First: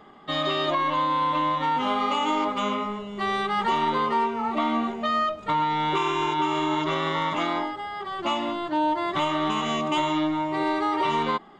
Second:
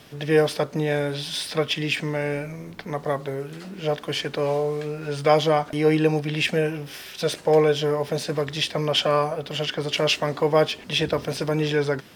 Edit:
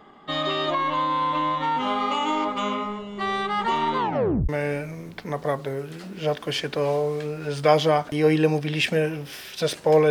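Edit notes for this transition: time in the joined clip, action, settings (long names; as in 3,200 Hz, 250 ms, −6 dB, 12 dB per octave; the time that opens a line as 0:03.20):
first
0:03.98: tape stop 0.51 s
0:04.49: continue with second from 0:02.10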